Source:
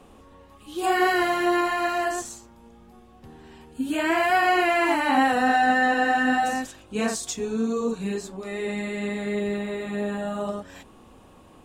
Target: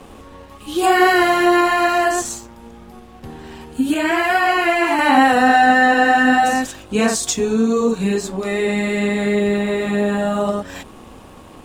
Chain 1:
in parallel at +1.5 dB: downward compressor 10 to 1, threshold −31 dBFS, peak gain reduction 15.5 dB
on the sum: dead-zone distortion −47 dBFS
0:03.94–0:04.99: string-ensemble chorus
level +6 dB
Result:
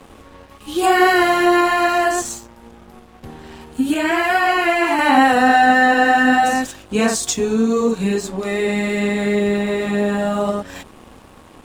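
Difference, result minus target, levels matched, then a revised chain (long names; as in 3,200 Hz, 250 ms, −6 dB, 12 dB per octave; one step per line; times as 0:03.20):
dead-zone distortion: distortion +6 dB
in parallel at +1.5 dB: downward compressor 10 to 1, threshold −31 dBFS, peak gain reduction 15.5 dB
on the sum: dead-zone distortion −53.5 dBFS
0:03.94–0:04.99: string-ensemble chorus
level +6 dB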